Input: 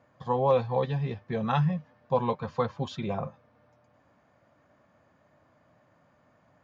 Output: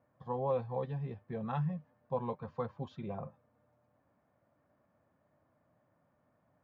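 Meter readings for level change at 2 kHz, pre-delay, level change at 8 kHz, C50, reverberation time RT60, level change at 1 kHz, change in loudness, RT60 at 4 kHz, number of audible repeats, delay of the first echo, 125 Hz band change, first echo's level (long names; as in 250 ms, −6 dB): −13.5 dB, no reverb audible, can't be measured, no reverb audible, no reverb audible, −10.5 dB, −9.0 dB, no reverb audible, no echo audible, no echo audible, −8.5 dB, no echo audible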